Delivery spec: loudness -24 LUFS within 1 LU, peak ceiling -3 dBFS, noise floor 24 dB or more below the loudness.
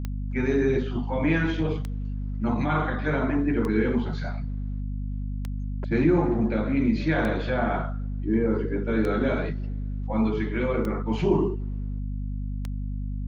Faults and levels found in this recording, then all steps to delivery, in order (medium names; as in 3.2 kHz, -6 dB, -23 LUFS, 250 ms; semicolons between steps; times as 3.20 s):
clicks found 8; hum 50 Hz; highest harmonic 250 Hz; hum level -27 dBFS; loudness -26.5 LUFS; peak level -10.0 dBFS; loudness target -24.0 LUFS
-> de-click; hum notches 50/100/150/200/250 Hz; trim +2.5 dB